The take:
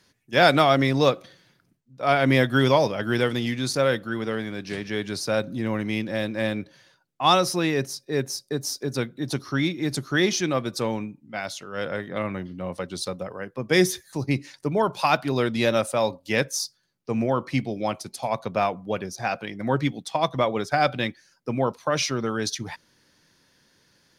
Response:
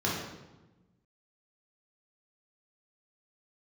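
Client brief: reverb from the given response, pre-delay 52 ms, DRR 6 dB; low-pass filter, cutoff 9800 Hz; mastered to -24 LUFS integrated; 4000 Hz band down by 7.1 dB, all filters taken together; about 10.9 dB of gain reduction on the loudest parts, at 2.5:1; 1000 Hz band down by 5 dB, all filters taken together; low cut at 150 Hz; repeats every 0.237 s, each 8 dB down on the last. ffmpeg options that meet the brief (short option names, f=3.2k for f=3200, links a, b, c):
-filter_complex "[0:a]highpass=150,lowpass=9.8k,equalizer=f=1k:t=o:g=-7,equalizer=f=4k:t=o:g=-8.5,acompressor=threshold=-33dB:ratio=2.5,aecho=1:1:237|474|711|948|1185:0.398|0.159|0.0637|0.0255|0.0102,asplit=2[a][b];[1:a]atrim=start_sample=2205,adelay=52[c];[b][c]afir=irnorm=-1:irlink=0,volume=-16dB[d];[a][d]amix=inputs=2:normalize=0,volume=8.5dB"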